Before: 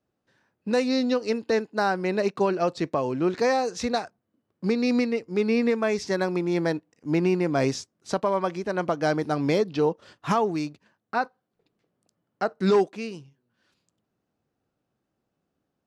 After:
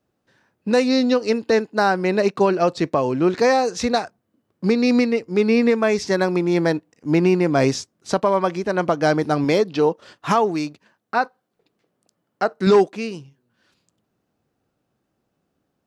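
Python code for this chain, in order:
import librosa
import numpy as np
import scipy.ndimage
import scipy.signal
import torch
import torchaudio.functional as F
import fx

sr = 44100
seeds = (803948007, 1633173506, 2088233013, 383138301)

y = fx.low_shelf(x, sr, hz=150.0, db=-8.5, at=(9.44, 12.67))
y = y * 10.0 ** (6.0 / 20.0)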